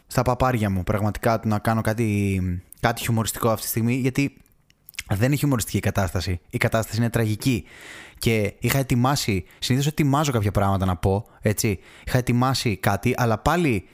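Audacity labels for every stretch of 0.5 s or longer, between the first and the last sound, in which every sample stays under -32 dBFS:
4.280000	4.890000	silence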